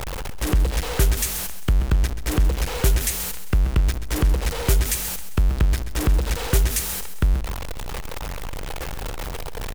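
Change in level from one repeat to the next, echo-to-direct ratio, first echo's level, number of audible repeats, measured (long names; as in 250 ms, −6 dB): −7.0 dB, −11.0 dB, −12.0 dB, 3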